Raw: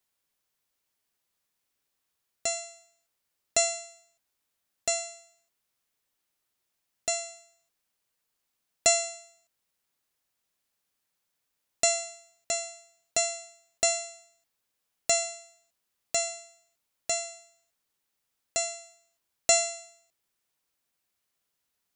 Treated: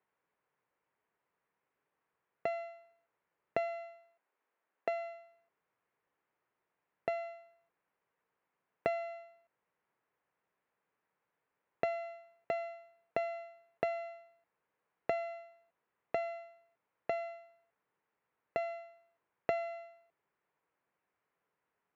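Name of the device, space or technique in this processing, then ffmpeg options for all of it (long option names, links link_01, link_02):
bass amplifier: -filter_complex "[0:a]acompressor=threshold=-31dB:ratio=4,highpass=85,equalizer=frequency=87:width_type=q:width=4:gain=-10,equalizer=frequency=240:width_type=q:width=4:gain=-4,equalizer=frequency=450:width_type=q:width=4:gain=5,equalizer=frequency=970:width_type=q:width=4:gain=4,lowpass=frequency=2100:width=0.5412,lowpass=frequency=2100:width=1.3066,asplit=3[link_01][link_02][link_03];[link_01]afade=type=out:start_time=3.67:duration=0.02[link_04];[link_02]highpass=270,afade=type=in:start_time=3.67:duration=0.02,afade=type=out:start_time=5.13:duration=0.02[link_05];[link_03]afade=type=in:start_time=5.13:duration=0.02[link_06];[link_04][link_05][link_06]amix=inputs=3:normalize=0,volume=3.5dB"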